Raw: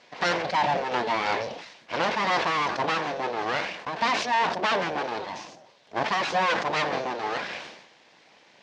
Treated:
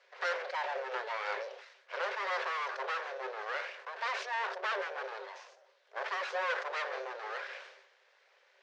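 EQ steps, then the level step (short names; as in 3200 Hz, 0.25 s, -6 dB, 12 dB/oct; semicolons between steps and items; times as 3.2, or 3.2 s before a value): rippled Chebyshev high-pass 380 Hz, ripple 9 dB; -5.5 dB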